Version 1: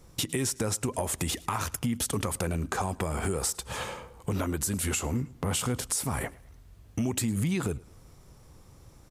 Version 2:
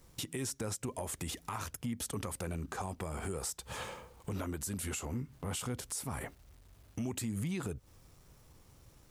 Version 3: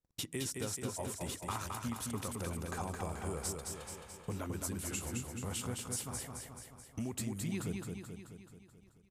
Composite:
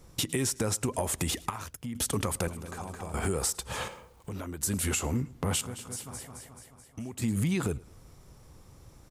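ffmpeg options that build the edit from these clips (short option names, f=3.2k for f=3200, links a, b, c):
-filter_complex "[1:a]asplit=2[a][b];[2:a]asplit=2[c][d];[0:a]asplit=5[e][f][g][h][i];[e]atrim=end=1.502[j];[a]atrim=start=1.498:end=1.952[k];[f]atrim=start=1.948:end=2.482[l];[c]atrim=start=2.478:end=3.142[m];[g]atrim=start=3.138:end=3.882[n];[b]atrim=start=3.878:end=4.632[o];[h]atrim=start=4.628:end=5.612[p];[d]atrim=start=5.608:end=7.222[q];[i]atrim=start=7.218[r];[j][k]acrossfade=d=0.004:c1=hsin:c2=hsin[s];[s][l]acrossfade=d=0.004:c1=hsin:c2=hsin[t];[t][m]acrossfade=d=0.004:c1=hsin:c2=hsin[u];[u][n]acrossfade=d=0.004:c1=hsin:c2=hsin[v];[v][o]acrossfade=d=0.004:c1=hsin:c2=hsin[w];[w][p]acrossfade=d=0.004:c1=hsin:c2=hsin[x];[x][q]acrossfade=d=0.004:c1=hsin:c2=hsin[y];[y][r]acrossfade=d=0.004:c1=hsin:c2=hsin"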